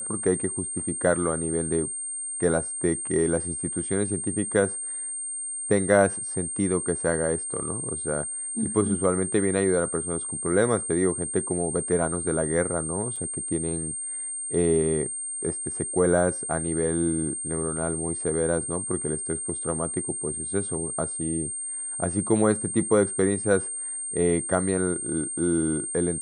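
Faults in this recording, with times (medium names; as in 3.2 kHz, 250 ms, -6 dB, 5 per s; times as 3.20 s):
whine 8.7 kHz -30 dBFS
13.16 s: dropout 4.3 ms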